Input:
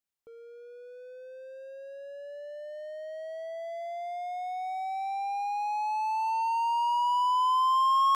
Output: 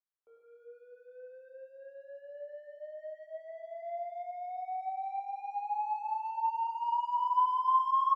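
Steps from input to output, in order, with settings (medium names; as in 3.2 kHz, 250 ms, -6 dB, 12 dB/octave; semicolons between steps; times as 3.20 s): three-band isolator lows -19 dB, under 420 Hz, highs -19 dB, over 2.1 kHz; delay 291 ms -13.5 dB; plate-style reverb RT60 1.5 s, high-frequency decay 0.4×, DRR -3 dB; trim -9 dB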